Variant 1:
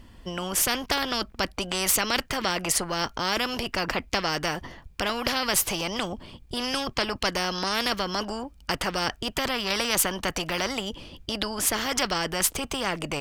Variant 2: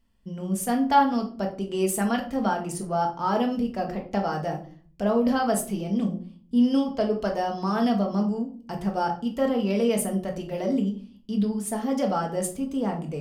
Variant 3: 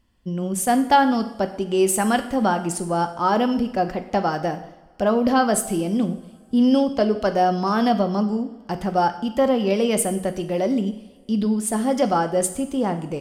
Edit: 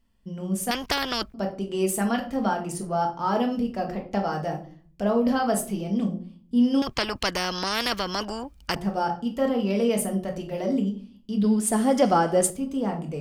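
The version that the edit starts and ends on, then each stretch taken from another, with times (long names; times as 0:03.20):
2
0:00.71–0:01.34: punch in from 1
0:06.82–0:08.76: punch in from 1
0:11.44–0:12.50: punch in from 3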